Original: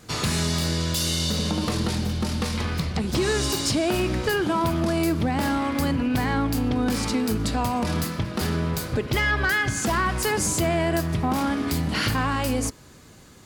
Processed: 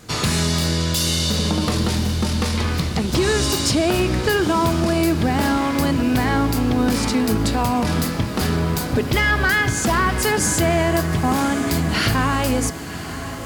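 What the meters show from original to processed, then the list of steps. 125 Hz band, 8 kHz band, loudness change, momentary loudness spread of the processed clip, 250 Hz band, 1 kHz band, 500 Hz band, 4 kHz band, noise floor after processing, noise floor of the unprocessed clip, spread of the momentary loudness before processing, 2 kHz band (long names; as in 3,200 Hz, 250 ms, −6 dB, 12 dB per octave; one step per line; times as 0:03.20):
+5.0 dB, +5.0 dB, +5.0 dB, 4 LU, +5.0 dB, +5.0 dB, +5.0 dB, +5.0 dB, −29 dBFS, −48 dBFS, 4 LU, +5.0 dB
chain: feedback delay with all-pass diffusion 1,044 ms, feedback 66%, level −13 dB
level +4.5 dB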